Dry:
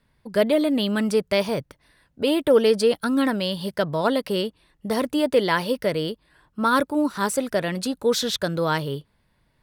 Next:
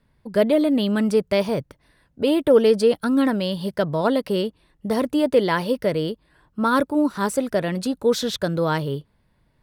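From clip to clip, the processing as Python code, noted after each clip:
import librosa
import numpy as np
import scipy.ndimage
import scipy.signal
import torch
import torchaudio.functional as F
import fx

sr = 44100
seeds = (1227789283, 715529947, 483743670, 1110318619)

y = fx.tilt_shelf(x, sr, db=3.0, hz=970.0)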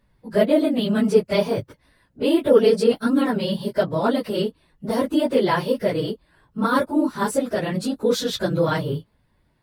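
y = fx.phase_scramble(x, sr, seeds[0], window_ms=50)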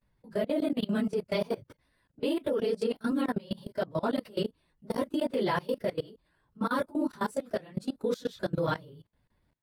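y = fx.level_steps(x, sr, step_db=22)
y = y * librosa.db_to_amplitude(-5.5)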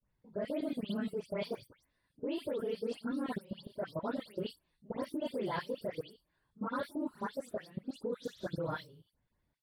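y = fx.dispersion(x, sr, late='highs', ms=135.0, hz=2900.0)
y = y * librosa.db_to_amplitude(-7.5)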